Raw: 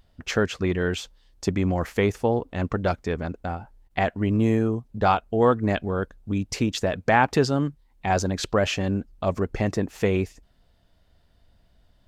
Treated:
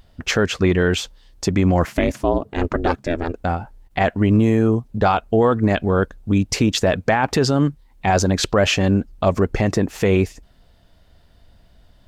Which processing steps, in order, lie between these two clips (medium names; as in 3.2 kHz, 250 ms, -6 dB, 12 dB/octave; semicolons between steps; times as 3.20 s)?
1.85–3.34 s: ring modulator 170 Hz; peak limiter -15.5 dBFS, peak gain reduction 10.5 dB; trim +8.5 dB